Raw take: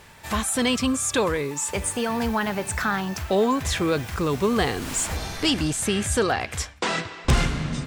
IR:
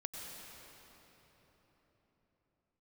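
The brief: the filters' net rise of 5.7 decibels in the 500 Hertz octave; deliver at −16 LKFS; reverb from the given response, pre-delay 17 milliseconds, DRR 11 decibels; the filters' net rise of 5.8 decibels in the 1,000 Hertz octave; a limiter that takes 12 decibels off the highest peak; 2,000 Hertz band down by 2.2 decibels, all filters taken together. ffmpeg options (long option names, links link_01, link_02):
-filter_complex "[0:a]equalizer=frequency=500:width_type=o:gain=5.5,equalizer=frequency=1000:width_type=o:gain=7,equalizer=frequency=2000:width_type=o:gain=-6,alimiter=limit=-18.5dB:level=0:latency=1,asplit=2[link_01][link_02];[1:a]atrim=start_sample=2205,adelay=17[link_03];[link_02][link_03]afir=irnorm=-1:irlink=0,volume=-10.5dB[link_04];[link_01][link_04]amix=inputs=2:normalize=0,volume=11dB"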